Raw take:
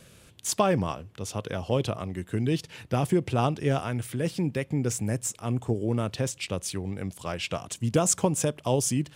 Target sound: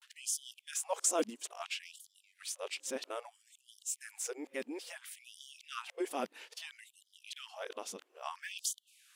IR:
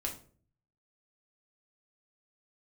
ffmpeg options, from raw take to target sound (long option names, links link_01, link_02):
-af "areverse,asubboost=boost=9.5:cutoff=85,afftfilt=real='re*gte(b*sr/1024,210*pow(3000/210,0.5+0.5*sin(2*PI*0.6*pts/sr)))':imag='im*gte(b*sr/1024,210*pow(3000/210,0.5+0.5*sin(2*PI*0.6*pts/sr)))':win_size=1024:overlap=0.75,volume=-6.5dB"